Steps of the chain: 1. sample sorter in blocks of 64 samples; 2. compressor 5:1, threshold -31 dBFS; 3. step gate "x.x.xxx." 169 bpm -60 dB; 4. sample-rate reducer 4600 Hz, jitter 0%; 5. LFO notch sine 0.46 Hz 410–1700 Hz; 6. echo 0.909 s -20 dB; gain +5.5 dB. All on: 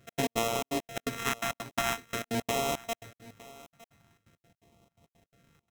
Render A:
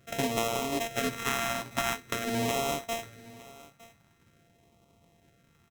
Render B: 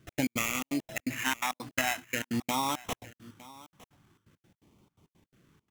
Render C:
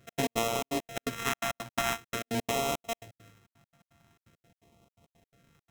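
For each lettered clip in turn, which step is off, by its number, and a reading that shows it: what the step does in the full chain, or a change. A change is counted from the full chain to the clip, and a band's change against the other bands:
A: 3, crest factor change -1.5 dB; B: 1, crest factor change +2.0 dB; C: 6, momentary loudness spread change -14 LU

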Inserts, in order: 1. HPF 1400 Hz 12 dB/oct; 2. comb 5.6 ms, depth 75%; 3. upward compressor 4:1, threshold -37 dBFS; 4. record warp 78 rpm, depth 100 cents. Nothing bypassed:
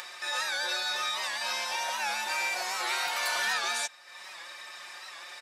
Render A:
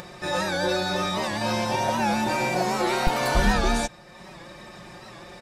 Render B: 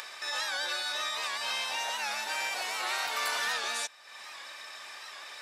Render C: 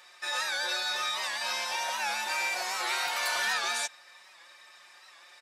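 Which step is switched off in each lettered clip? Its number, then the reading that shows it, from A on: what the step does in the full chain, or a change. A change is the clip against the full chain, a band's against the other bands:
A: 1, 250 Hz band +27.5 dB; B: 2, momentary loudness spread change -2 LU; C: 3, momentary loudness spread change -11 LU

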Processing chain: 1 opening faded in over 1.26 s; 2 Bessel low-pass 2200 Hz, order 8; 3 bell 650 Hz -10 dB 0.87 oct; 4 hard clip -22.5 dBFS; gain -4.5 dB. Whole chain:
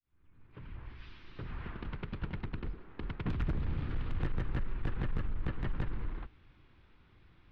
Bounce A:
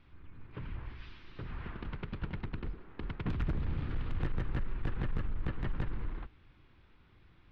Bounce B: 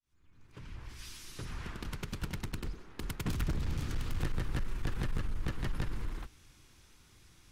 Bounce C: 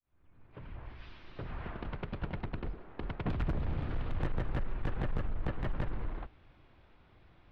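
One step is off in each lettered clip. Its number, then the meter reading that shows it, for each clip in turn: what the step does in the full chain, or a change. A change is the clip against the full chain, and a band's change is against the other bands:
1, momentary loudness spread change -2 LU; 2, momentary loudness spread change -2 LU; 3, 500 Hz band +3.5 dB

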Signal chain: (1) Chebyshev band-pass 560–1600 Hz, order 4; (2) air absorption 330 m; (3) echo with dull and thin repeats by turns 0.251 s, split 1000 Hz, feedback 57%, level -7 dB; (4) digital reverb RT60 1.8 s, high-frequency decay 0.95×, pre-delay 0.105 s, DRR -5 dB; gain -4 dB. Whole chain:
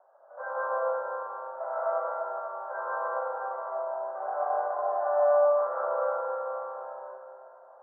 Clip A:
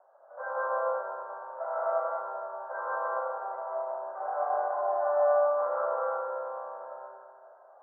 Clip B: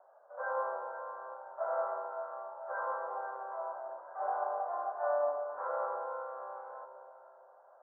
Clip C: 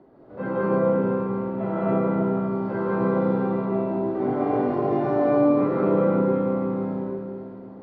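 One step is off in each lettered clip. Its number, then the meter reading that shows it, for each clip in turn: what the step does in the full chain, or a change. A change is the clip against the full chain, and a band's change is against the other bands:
3, momentary loudness spread change +1 LU; 4, loudness change -7.5 LU; 1, momentary loudness spread change -5 LU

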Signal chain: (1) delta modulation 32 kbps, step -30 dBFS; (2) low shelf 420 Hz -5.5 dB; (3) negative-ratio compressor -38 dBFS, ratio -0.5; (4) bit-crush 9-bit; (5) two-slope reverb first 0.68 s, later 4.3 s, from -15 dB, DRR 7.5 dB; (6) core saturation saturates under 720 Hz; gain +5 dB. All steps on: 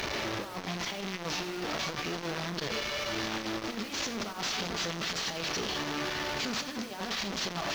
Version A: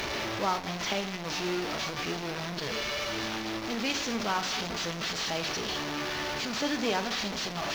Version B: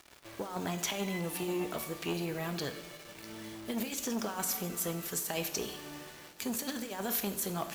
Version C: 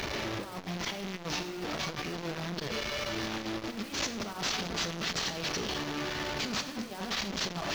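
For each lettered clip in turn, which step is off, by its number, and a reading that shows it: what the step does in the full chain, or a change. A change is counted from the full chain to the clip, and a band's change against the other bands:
3, crest factor change +3.5 dB; 1, 4 kHz band -8.0 dB; 2, 125 Hz band +2.0 dB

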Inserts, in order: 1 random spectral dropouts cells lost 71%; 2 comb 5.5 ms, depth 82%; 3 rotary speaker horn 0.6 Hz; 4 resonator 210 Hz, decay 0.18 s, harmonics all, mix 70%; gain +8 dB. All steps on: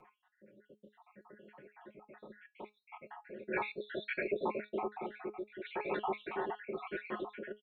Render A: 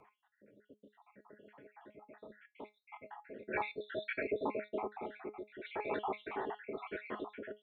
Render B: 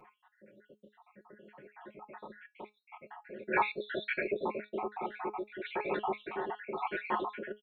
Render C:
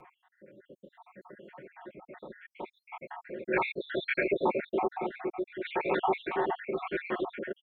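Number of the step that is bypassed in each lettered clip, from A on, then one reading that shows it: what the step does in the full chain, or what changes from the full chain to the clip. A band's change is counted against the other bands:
2, loudness change -1.5 LU; 3, 1 kHz band +4.0 dB; 4, loudness change +7.5 LU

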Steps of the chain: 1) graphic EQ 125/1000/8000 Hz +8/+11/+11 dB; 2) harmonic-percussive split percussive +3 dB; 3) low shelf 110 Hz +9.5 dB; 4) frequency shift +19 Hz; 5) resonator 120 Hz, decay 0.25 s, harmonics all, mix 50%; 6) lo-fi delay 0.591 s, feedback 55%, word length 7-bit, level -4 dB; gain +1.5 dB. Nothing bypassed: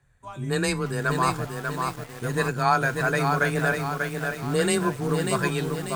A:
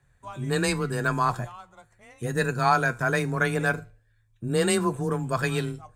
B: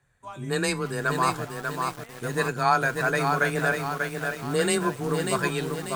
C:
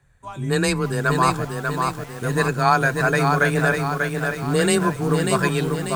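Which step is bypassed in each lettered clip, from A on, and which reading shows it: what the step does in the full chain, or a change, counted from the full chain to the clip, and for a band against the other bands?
6, momentary loudness spread change +5 LU; 3, 125 Hz band -4.0 dB; 5, loudness change +4.5 LU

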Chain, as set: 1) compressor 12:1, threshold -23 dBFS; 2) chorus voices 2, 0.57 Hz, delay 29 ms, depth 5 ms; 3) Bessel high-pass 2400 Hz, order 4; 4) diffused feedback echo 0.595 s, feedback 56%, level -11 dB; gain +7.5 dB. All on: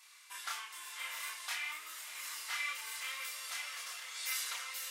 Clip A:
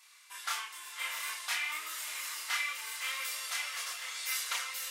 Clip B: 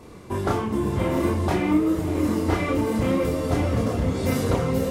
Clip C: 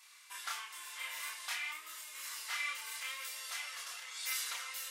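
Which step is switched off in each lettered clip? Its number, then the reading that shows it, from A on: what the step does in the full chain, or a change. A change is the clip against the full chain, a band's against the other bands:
1, mean gain reduction 4.0 dB; 3, 500 Hz band +36.5 dB; 4, echo-to-direct -9.5 dB to none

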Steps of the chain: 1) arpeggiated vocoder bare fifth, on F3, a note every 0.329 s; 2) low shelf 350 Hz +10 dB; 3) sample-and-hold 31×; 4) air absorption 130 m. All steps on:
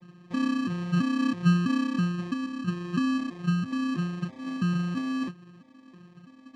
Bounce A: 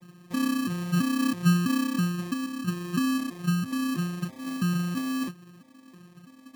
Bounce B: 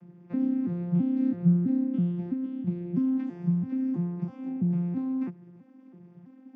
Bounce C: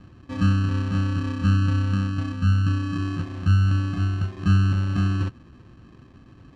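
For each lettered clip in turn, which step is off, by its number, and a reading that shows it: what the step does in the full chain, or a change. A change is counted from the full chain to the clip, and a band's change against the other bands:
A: 4, 4 kHz band +3.0 dB; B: 3, distortion -4 dB; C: 1, 125 Hz band +9.0 dB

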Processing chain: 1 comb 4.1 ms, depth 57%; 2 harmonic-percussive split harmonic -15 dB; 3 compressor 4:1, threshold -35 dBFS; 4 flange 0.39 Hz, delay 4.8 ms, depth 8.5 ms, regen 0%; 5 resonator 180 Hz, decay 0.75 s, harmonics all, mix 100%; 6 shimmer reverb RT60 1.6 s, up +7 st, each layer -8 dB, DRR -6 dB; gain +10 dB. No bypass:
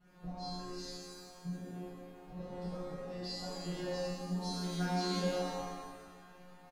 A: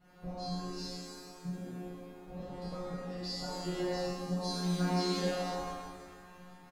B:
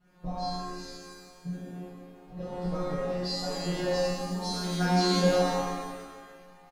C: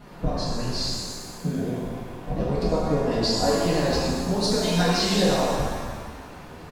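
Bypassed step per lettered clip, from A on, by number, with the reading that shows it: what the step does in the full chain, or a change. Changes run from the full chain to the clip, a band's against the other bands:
4, loudness change +2.5 LU; 3, mean gain reduction 6.0 dB; 5, 8 kHz band +2.0 dB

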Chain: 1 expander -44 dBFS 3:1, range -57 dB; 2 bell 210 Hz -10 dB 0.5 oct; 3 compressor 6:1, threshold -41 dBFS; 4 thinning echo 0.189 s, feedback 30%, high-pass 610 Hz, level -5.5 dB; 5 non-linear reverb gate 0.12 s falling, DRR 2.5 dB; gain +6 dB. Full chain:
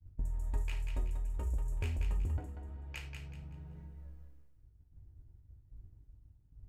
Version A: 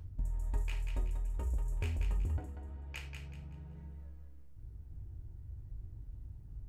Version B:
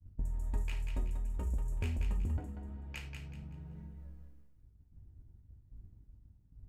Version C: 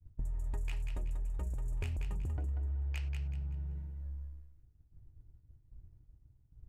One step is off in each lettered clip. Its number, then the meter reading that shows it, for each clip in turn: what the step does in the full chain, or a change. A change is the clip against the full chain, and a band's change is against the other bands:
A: 1, momentary loudness spread change -7 LU; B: 2, 250 Hz band +5.0 dB; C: 5, echo-to-direct -0.5 dB to -6.0 dB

